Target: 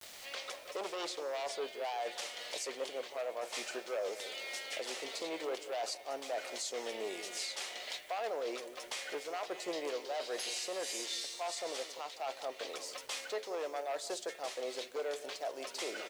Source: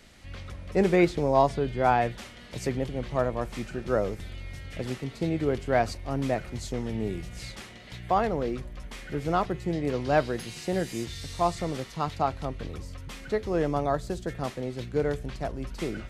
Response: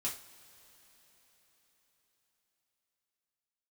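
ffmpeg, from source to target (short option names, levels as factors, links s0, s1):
-filter_complex "[0:a]asplit=2[s0][s1];[s1]aeval=exprs='0.376*sin(PI/2*3.98*val(0)/0.376)':c=same,volume=0.501[s2];[s0][s2]amix=inputs=2:normalize=0,highpass=f=570:w=0.5412,highpass=f=570:w=1.3066,agate=range=0.0224:threshold=0.0141:ratio=3:detection=peak,areverse,acompressor=threshold=0.0447:ratio=12,areverse,lowpass=9100,equalizer=f=1400:t=o:w=2.1:g=-10.5,asplit=2[s3][s4];[s4]adelay=172,lowpass=f=810:p=1,volume=0.237,asplit=2[s5][s6];[s6]adelay=172,lowpass=f=810:p=1,volume=0.39,asplit=2[s7][s8];[s8]adelay=172,lowpass=f=810:p=1,volume=0.39,asplit=2[s9][s10];[s10]adelay=172,lowpass=f=810:p=1,volume=0.39[s11];[s3][s5][s7][s9][s11]amix=inputs=5:normalize=0,acrusher=bits=9:mix=0:aa=0.000001,alimiter=level_in=2.11:limit=0.0631:level=0:latency=1:release=377,volume=0.473,acompressor=mode=upward:threshold=0.00708:ratio=2.5,volume=1.19"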